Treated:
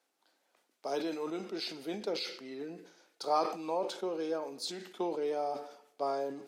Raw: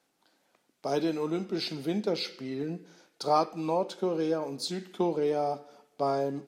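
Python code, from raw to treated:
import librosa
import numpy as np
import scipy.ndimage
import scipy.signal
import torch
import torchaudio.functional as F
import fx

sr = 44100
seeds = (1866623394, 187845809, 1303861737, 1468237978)

y = scipy.signal.sosfilt(scipy.signal.butter(2, 340.0, 'highpass', fs=sr, output='sos'), x)
y = fx.sustainer(y, sr, db_per_s=88.0)
y = F.gain(torch.from_numpy(y), -4.5).numpy()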